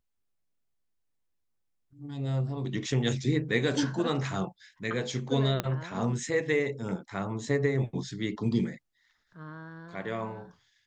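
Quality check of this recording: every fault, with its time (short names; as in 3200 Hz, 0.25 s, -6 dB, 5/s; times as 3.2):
5.6 pop -13 dBFS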